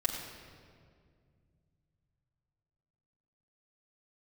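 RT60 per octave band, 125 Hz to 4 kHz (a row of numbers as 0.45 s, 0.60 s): 4.3 s, 3.1 s, 2.4 s, 1.9 s, 1.7 s, 1.4 s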